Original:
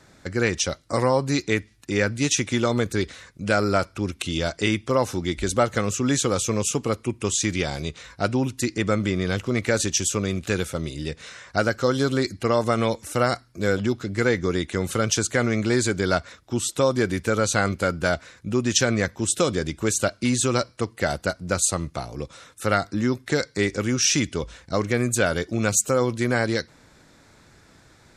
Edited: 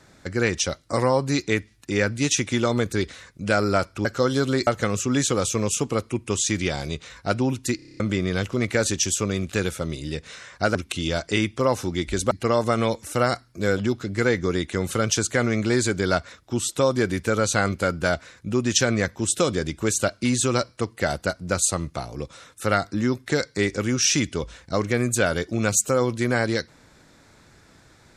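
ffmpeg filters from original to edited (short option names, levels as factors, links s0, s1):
-filter_complex "[0:a]asplit=13[s0][s1][s2][s3][s4][s5][s6][s7][s8][s9][s10][s11][s12];[s0]atrim=end=4.052[s13];[s1]atrim=start=11.688:end=12.312[s14];[s2]atrim=start=5.608:end=8.732[s15];[s3]atrim=start=8.698:end=8.732[s16];[s4]atrim=start=8.698:end=8.732[s17];[s5]atrim=start=8.698:end=8.732[s18];[s6]atrim=start=8.698:end=8.732[s19];[s7]atrim=start=8.698:end=8.732[s20];[s8]atrim=start=8.698:end=8.732[s21];[s9]atrim=start=8.698:end=8.732[s22];[s10]atrim=start=8.938:end=11.692[s23];[s11]atrim=start=4.048:end=5.612[s24];[s12]atrim=start=12.308[s25];[s13][s14]acrossfade=d=0.004:c1=hsin:c2=hsin[s26];[s26][s15]acrossfade=d=0.004:c1=hsin:c2=hsin[s27];[s27][s16]acrossfade=d=0.004:c1=hsin:c2=hsin[s28];[s28][s17]acrossfade=d=0.004:c1=hsin:c2=hsin[s29];[s29][s18]acrossfade=d=0.004:c1=hsin:c2=hsin[s30];[s30][s19]acrossfade=d=0.004:c1=hsin:c2=hsin[s31];[s31][s20]acrossfade=d=0.004:c1=hsin:c2=hsin[s32];[s32][s21]acrossfade=d=0.004:c1=hsin:c2=hsin[s33];[s33][s22]acrossfade=d=0.004:c1=hsin:c2=hsin[s34];[s34][s23]acrossfade=d=0.004:c1=hsin:c2=hsin[s35];[s35][s24]acrossfade=d=0.004:c1=hsin:c2=hsin[s36];[s36][s25]acrossfade=d=0.004:c1=hsin:c2=hsin"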